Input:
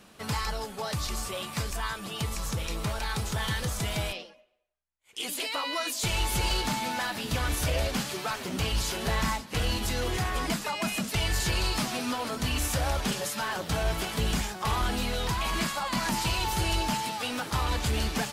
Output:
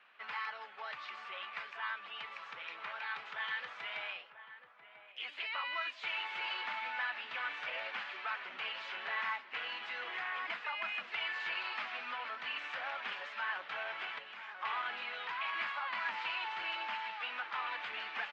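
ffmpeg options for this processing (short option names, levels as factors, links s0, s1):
-filter_complex "[0:a]lowpass=f=2500:w=0.5412,lowpass=f=2500:w=1.3066,asettb=1/sr,asplit=3[s0][s1][s2];[s0]atrim=end=14.184[s3];[s1]atrim=start=14.18:end=14.59,asetpts=PTS-STARTPTS,afade=t=in:d=0.004:c=qsin,afade=t=out:st=0.406:d=0.004:c=qsin,acompressor=threshold=0.0178:ratio=4[s4];[s2]atrim=start=14.586[s5];[s3][s4]acrossfade=d=0.004:c1=hsin:c2=qsin[s6];[s6][s5]acrossfade=d=0.004:c1=qsin:c2=hsin,highpass=1500,asplit=2[s7][s8];[s8]adelay=991.3,volume=0.282,highshelf=f=4000:g=-22.3[s9];[s7][s9]amix=inputs=2:normalize=0"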